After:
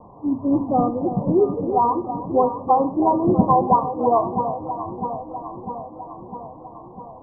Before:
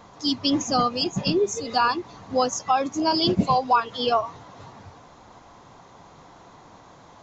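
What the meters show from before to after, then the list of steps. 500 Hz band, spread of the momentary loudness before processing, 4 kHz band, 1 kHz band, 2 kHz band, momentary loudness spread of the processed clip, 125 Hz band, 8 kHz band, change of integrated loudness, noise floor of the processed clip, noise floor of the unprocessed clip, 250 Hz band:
+5.5 dB, 5 LU, below −40 dB, +4.0 dB, below −35 dB, 19 LU, +5.5 dB, can't be measured, +2.5 dB, −42 dBFS, −50 dBFS, +5.5 dB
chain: Butterworth low-pass 1,100 Hz 96 dB per octave
delay that swaps between a low-pass and a high-pass 326 ms, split 840 Hz, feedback 80%, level −8.5 dB
four-comb reverb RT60 0.51 s, combs from 26 ms, DRR 13.5 dB
one half of a high-frequency compander decoder only
level +4.5 dB

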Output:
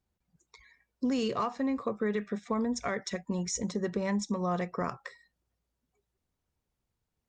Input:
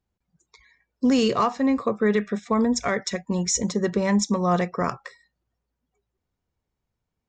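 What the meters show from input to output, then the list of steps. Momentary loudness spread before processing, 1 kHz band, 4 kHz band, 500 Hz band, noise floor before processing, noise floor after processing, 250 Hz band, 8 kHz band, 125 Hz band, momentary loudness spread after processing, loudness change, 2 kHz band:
7 LU, −9.0 dB, −10.5 dB, −9.0 dB, −82 dBFS, −85 dBFS, −9.0 dB, −11.0 dB, −8.5 dB, 5 LU, −9.0 dB, −9.0 dB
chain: downward compressor 2 to 1, threshold −32 dBFS, peak gain reduction 9 dB
level −1.5 dB
Opus 48 kbit/s 48,000 Hz

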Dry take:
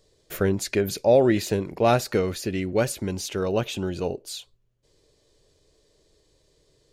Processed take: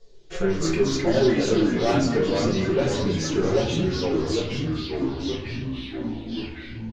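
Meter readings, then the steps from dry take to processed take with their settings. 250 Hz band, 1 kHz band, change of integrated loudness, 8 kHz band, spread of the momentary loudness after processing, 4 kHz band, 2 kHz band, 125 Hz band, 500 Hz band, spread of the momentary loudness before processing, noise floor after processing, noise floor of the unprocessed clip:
+5.0 dB, −1.5 dB, 0.0 dB, −0.5 dB, 11 LU, +4.5 dB, +2.0 dB, +3.0 dB, +0.5 dB, 12 LU, −41 dBFS, −66 dBFS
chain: reverb reduction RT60 1.6 s
Butterworth low-pass 7,000 Hz 48 dB per octave
comb filter 7.2 ms, depth 36%
in parallel at −2 dB: downward compressor, threshold −27 dBFS, peak gain reduction 14 dB
on the sum: soft clipping −15 dBFS, distortion −12 dB
flanger 0.93 Hz, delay 4.3 ms, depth 1.7 ms, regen +40%
on a send: echo with a time of its own for lows and highs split 310 Hz, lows 88 ms, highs 225 ms, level −12.5 dB
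on the sum: rectangular room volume 42 cubic metres, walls mixed, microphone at 1 metre
delay with pitch and tempo change per echo 121 ms, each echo −3 semitones, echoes 3
level −4 dB

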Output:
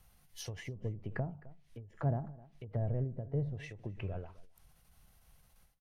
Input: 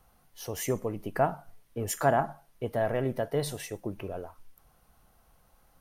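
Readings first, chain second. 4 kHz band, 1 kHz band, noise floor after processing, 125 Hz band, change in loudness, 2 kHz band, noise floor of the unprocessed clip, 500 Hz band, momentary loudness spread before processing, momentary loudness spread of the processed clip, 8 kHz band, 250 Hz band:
can't be measured, −18.0 dB, −68 dBFS, +0.5 dB, −8.0 dB, −12.5 dB, −65 dBFS, −14.0 dB, 15 LU, 18 LU, below −15 dB, −7.0 dB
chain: treble cut that deepens with the level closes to 450 Hz, closed at −28 dBFS
flat-topped bell 570 Hz −9 dB 3 octaves
on a send: single-tap delay 260 ms −20 dB
on the sum: dynamic equaliser 100 Hz, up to +5 dB, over −51 dBFS, Q 2.2
every ending faded ahead of time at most 120 dB per second
level +1 dB

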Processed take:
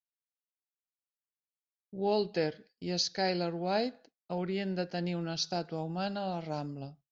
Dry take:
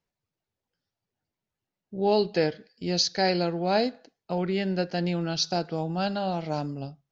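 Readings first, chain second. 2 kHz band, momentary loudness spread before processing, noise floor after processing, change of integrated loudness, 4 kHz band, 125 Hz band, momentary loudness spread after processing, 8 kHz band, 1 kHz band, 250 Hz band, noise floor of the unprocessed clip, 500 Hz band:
−6.5 dB, 8 LU, below −85 dBFS, −6.5 dB, −6.5 dB, −6.5 dB, 8 LU, can't be measured, −6.5 dB, −6.5 dB, below −85 dBFS, −6.5 dB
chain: downward expander −45 dBFS
level −6.5 dB

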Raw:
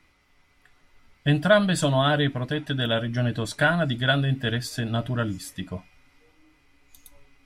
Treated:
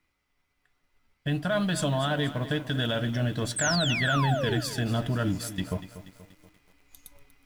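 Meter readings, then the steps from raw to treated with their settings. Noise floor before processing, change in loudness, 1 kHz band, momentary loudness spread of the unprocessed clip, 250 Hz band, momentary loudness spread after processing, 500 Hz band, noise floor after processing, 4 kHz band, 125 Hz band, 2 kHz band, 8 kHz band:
−63 dBFS, −3.5 dB, −3.5 dB, 12 LU, −3.0 dB, 9 LU, −5.5 dB, −76 dBFS, −2.0 dB, −3.0 dB, −4.5 dB, +4.5 dB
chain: mu-law and A-law mismatch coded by A
speech leveller within 5 dB 2 s
brickwall limiter −18 dBFS, peak gain reduction 10.5 dB
sound drawn into the spectrogram fall, 0:03.56–0:04.61, 290–8,800 Hz −30 dBFS
feedback echo at a low word length 240 ms, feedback 55%, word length 8 bits, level −13.5 dB

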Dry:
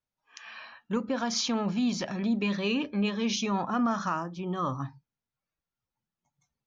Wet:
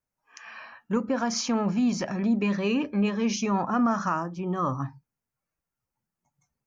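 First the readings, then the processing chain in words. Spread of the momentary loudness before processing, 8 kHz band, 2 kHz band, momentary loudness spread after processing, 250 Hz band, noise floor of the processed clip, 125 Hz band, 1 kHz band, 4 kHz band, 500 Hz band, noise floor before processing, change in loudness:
14 LU, can't be measured, +1.0 dB, 11 LU, +3.5 dB, below −85 dBFS, +3.5 dB, +3.0 dB, −3.0 dB, +3.5 dB, below −85 dBFS, +3.0 dB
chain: parametric band 3,600 Hz −13 dB 0.6 octaves
level +3.5 dB

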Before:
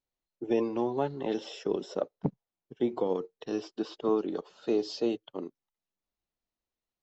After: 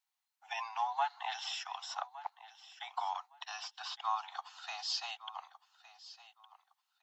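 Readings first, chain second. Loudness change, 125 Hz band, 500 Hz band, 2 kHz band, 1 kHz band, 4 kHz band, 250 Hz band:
−7.0 dB, below −40 dB, −23.5 dB, +5.0 dB, +4.0 dB, +5.0 dB, below −40 dB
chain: Butterworth high-pass 740 Hz 96 dB per octave
repeating echo 1,162 ms, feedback 20%, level −16.5 dB
level +5 dB

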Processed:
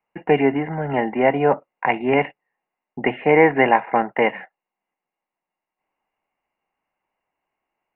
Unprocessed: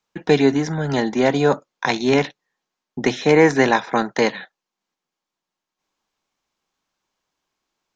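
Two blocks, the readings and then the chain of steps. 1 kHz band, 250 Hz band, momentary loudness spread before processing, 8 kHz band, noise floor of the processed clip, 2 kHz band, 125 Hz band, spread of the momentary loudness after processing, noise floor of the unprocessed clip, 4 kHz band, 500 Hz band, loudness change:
+3.0 dB, −3.0 dB, 9 LU, can't be measured, below −85 dBFS, +0.5 dB, −4.0 dB, 10 LU, −85 dBFS, −9.5 dB, −0.5 dB, −0.5 dB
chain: Chebyshev low-pass with heavy ripple 2,900 Hz, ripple 9 dB
level +4.5 dB

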